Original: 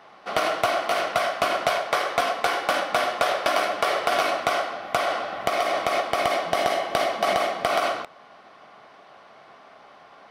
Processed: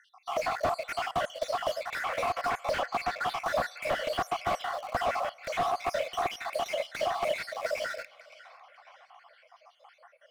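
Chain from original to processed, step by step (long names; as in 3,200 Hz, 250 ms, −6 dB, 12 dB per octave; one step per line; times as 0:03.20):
time-frequency cells dropped at random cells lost 67%
Chebyshev high-pass filter 490 Hz, order 8
notch filter 3,800 Hz, Q 18
in parallel at −10 dB: bit-depth reduction 6 bits, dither none
0:02.70–0:03.26: on the sum: high shelf with overshoot 7,300 Hz −9.5 dB, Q 1.5
feedback echo with a band-pass in the loop 549 ms, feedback 47%, band-pass 2,300 Hz, level −18.5 dB
on a send at −23 dB: convolution reverb RT60 3.6 s, pre-delay 3 ms
on the sum: slew-rate limiting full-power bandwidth 66 Hz
level −2 dB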